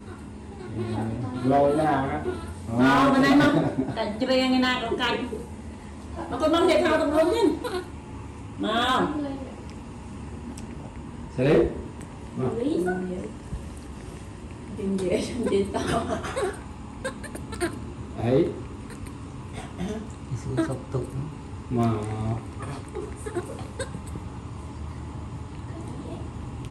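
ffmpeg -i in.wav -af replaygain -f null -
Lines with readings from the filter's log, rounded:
track_gain = +4.6 dB
track_peak = 0.184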